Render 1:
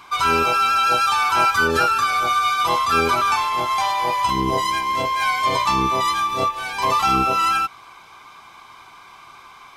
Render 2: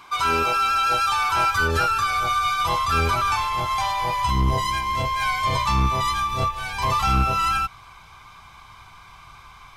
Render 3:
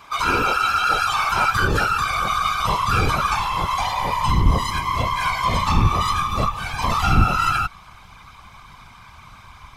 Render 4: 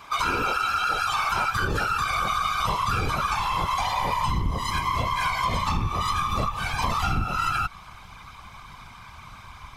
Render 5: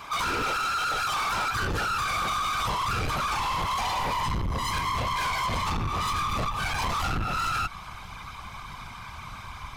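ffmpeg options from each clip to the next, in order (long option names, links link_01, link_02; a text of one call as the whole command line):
ffmpeg -i in.wav -af "asubboost=boost=10.5:cutoff=100,acontrast=78,volume=-9dB" out.wav
ffmpeg -i in.wav -af "afftfilt=real='hypot(re,im)*cos(2*PI*random(0))':imag='hypot(re,im)*sin(2*PI*random(1))':win_size=512:overlap=0.75,lowshelf=frequency=100:gain=7,volume=7dB" out.wav
ffmpeg -i in.wav -af "acompressor=threshold=-21dB:ratio=10" out.wav
ffmpeg -i in.wav -af "asoftclip=type=tanh:threshold=-29dB,volume=4dB" out.wav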